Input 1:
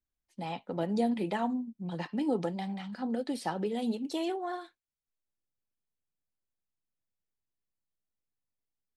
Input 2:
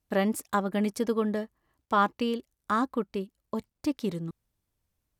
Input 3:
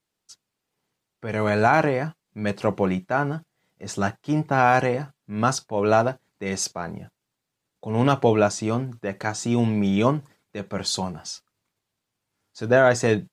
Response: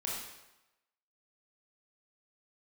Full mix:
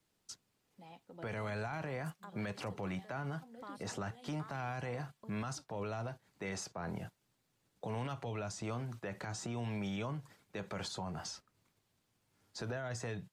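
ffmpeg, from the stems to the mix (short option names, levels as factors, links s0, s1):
-filter_complex "[0:a]adelay=400,volume=0.126[s0];[1:a]acompressor=threshold=0.0158:ratio=2,adelay=1700,volume=0.133[s1];[2:a]lowshelf=f=350:g=5,acrossover=split=160[s2][s3];[s3]acompressor=threshold=0.0355:ratio=5[s4];[s2][s4]amix=inputs=2:normalize=0,volume=1.12[s5];[s0][s1][s5]amix=inputs=3:normalize=0,acrossover=split=570|2100[s6][s7][s8];[s6]acompressor=threshold=0.00891:ratio=4[s9];[s7]acompressor=threshold=0.0141:ratio=4[s10];[s8]acompressor=threshold=0.00501:ratio=4[s11];[s9][s10][s11]amix=inputs=3:normalize=0,alimiter=level_in=2.37:limit=0.0631:level=0:latency=1:release=44,volume=0.422"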